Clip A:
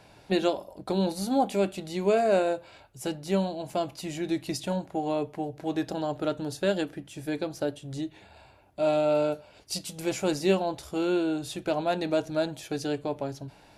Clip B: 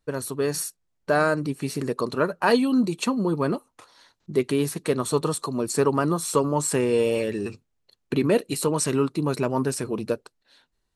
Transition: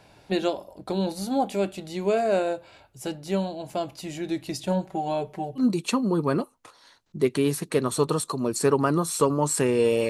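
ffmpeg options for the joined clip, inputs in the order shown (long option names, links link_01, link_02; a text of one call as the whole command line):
ffmpeg -i cue0.wav -i cue1.wav -filter_complex "[0:a]asettb=1/sr,asplit=3[link_01][link_02][link_03];[link_01]atrim=end=4.674[link_04];[link_02]atrim=start=4.67:end=5.65,asetpts=PTS-STARTPTS,afade=type=in:duration=0.004:curve=qsin,afade=type=out:start_time=0.976:duration=0.004:curve=qsin,aecho=1:1:5.3:0.75,atrim=end_sample=43218[link_05];[link_03]atrim=start=5.646[link_06];[link_04][link_05]acrossfade=duration=0.004:curve1=hsin:curve2=qsin[link_07];[link_07][link_06]acrossfade=duration=0.004:curve1=qsin:curve2=hsin,apad=whole_dur=10.09,atrim=end=10.09,atrim=end=5.65,asetpts=PTS-STARTPTS[link_08];[1:a]atrim=start=2.69:end=7.23,asetpts=PTS-STARTPTS[link_09];[link_08][link_09]acrossfade=duration=0.1:curve1=tri:curve2=tri" out.wav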